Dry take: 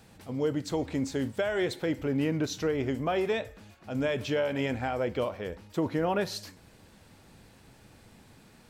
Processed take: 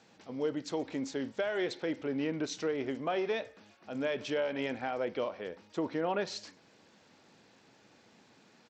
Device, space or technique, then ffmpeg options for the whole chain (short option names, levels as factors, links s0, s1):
Bluetooth headset: -af "highpass=230,aresample=16000,aresample=44100,volume=0.668" -ar 32000 -c:a sbc -b:a 64k